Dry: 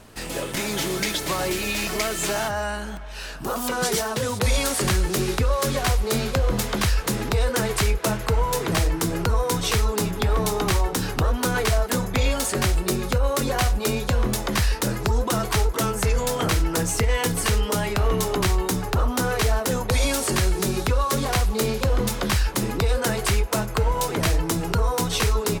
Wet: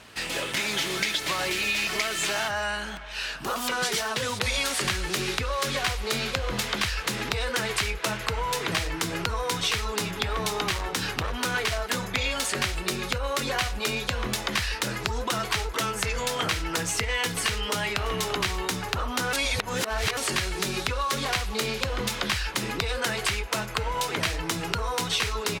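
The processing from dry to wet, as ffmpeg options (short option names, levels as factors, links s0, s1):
-filter_complex "[0:a]asettb=1/sr,asplit=3[s0][s1][s2];[s0]atrim=end=10.674[s3];[s1]atrim=start=10.67:end=11.72,asetpts=PTS-STARTPTS,afade=t=in:d=0.004:c=qsin,afade=t=out:st=1.046:d=0.004:c=qsin,asoftclip=type=hard:threshold=0.126[s4];[s2]atrim=start=11.716[s5];[s3][s4]acrossfade=d=0.004:c1=hsin:c2=qsin[s6];[s6][s5]acrossfade=d=0.004:c1=qsin:c2=hsin,asplit=2[s7][s8];[s8]afade=t=in:st=17.64:d=0.01,afade=t=out:st=18.31:d=0.01,aecho=0:1:340|680|1020:0.141254|0.0494388|0.0173036[s9];[s7][s9]amix=inputs=2:normalize=0,asplit=3[s10][s11][s12];[s10]atrim=end=19.332[s13];[s11]atrim=start=19.328:end=20.172,asetpts=PTS-STARTPTS,areverse[s14];[s12]atrim=start=20.168[s15];[s13][s14]acrossfade=d=0.004:c1=hsin:c2=hsin[s16];[s16][s15]acrossfade=d=0.004:c1=hsin:c2=hsin,highpass=46,equalizer=f=2700:w=0.44:g=12.5,acompressor=threshold=0.112:ratio=2.5,volume=0.501"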